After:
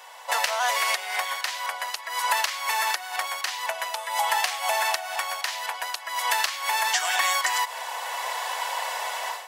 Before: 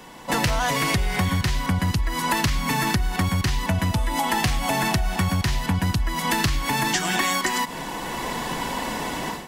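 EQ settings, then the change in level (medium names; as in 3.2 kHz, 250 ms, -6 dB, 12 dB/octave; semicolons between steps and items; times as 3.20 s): steep high-pass 580 Hz 36 dB/octave; 0.0 dB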